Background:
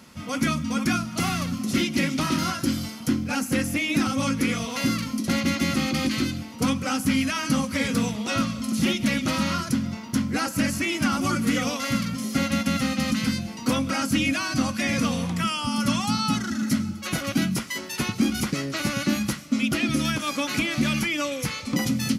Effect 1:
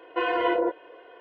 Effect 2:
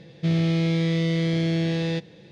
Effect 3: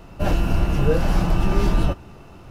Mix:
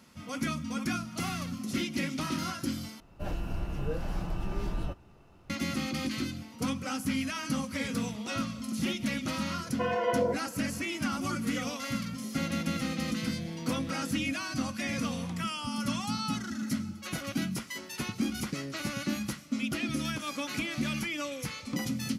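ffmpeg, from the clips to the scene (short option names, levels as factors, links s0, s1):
-filter_complex "[0:a]volume=0.376[s0];[1:a]lowshelf=f=380:t=q:w=3:g=-7.5[s1];[s0]asplit=2[s2][s3];[s2]atrim=end=3.004[s4];[3:a]atrim=end=2.5,asetpts=PTS-STARTPTS,volume=0.188[s5];[s3]atrim=start=5.496[s6];[s1]atrim=end=1.2,asetpts=PTS-STARTPTS,volume=0.422,afade=t=in:d=0.004:c=hsin,afade=t=out:st=1.196:d=0.004:c=hsin,adelay=9630[s7];[2:a]atrim=end=2.31,asetpts=PTS-STARTPTS,volume=0.141,afade=t=in:d=0.004:c=hsin,afade=t=out:st=2.306:d=0.004:c=hsin,adelay=12130[s8];[s4][s5]acrossfade=d=0.004:c1=hsin:c2=hsin[s9];[s9][s6]acrossfade=d=0.004:c1=hsin:c2=hsin[s10];[s10][s7][s8]amix=inputs=3:normalize=0"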